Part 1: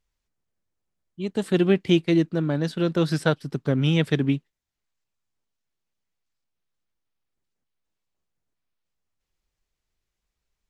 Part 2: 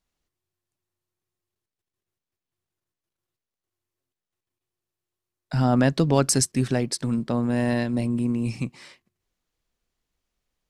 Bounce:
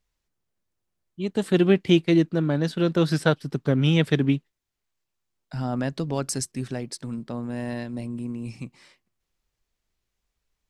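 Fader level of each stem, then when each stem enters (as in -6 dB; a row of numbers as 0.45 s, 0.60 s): +1.0 dB, -7.5 dB; 0.00 s, 0.00 s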